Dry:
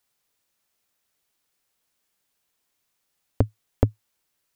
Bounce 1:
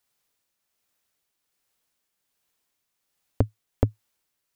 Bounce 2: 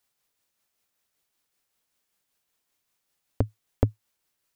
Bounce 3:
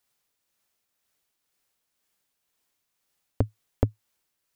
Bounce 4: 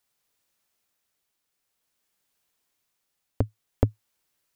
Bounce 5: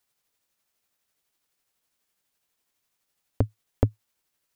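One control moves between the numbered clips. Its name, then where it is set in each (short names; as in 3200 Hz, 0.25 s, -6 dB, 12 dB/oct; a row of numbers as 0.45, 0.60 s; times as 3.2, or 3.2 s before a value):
tremolo, rate: 1.3, 5.2, 2, 0.52, 12 Hz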